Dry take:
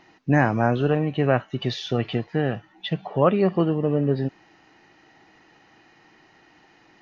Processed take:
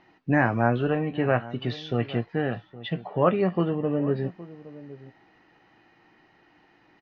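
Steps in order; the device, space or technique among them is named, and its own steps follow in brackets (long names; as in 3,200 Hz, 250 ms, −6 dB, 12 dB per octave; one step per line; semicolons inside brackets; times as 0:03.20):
shout across a valley (high-frequency loss of the air 170 metres; slap from a distant wall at 140 metres, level −17 dB)
dynamic equaliser 1,900 Hz, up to +4 dB, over −37 dBFS, Q 0.77
double-tracking delay 17 ms −10.5 dB
level −3.5 dB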